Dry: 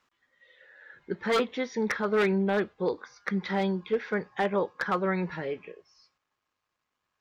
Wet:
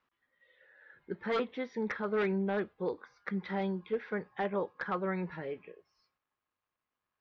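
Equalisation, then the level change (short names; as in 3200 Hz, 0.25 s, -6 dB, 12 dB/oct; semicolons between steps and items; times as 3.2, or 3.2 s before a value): air absorption 200 m; -5.5 dB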